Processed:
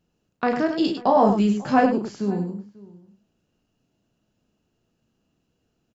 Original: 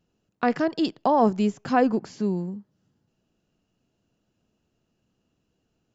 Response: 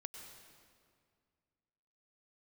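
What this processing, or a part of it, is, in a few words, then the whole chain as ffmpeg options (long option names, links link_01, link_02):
slapback doubling: -filter_complex "[0:a]asplit=3[link_01][link_02][link_03];[link_02]adelay=35,volume=-6.5dB[link_04];[link_03]adelay=101,volume=-7.5dB[link_05];[link_01][link_04][link_05]amix=inputs=3:normalize=0,asettb=1/sr,asplit=3[link_06][link_07][link_08];[link_06]atrim=end=0.674[link_09];[link_07]atrim=start=0.67:end=1.86,asetpts=PTS-STARTPTS,afade=type=in:duration=0.004:curve=qsin,afade=type=out:start_time=1.186:duration=0.004:curve=qsin,asplit=2[link_10][link_11];[link_11]adelay=15,volume=-4dB[link_12];[link_10][link_12]amix=inputs=2:normalize=0,atrim=end_sample=52479[link_13];[link_08]atrim=start=1.856[link_14];[link_09][link_13]acrossfade=duration=0.004:curve1=hsin:curve2=qsin[link_15];[link_15][link_14]acrossfade=duration=0.004:curve1=qsin:curve2=hsin,asplit=2[link_16][link_17];[link_17]adelay=542.3,volume=-21dB,highshelf=frequency=4000:gain=-12.2[link_18];[link_16][link_18]amix=inputs=2:normalize=0"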